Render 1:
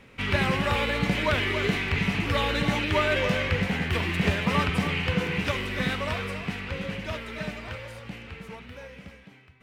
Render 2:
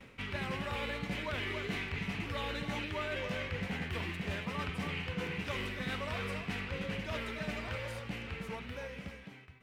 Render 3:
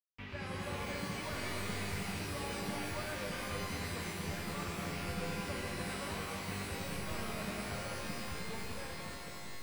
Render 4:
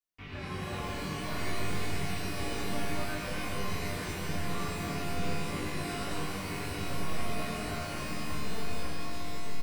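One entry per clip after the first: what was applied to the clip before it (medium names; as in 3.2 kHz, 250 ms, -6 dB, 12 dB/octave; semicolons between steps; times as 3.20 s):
gate with hold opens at -44 dBFS; reverse; compression 10:1, threshold -34 dBFS, peak gain reduction 16 dB; reverse
bit crusher 7-bit; distance through air 290 m; pitch-shifted reverb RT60 3 s, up +12 st, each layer -2 dB, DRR 1 dB; trim -5 dB
delay 906 ms -8 dB; simulated room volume 630 m³, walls furnished, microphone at 3.3 m; trim -2 dB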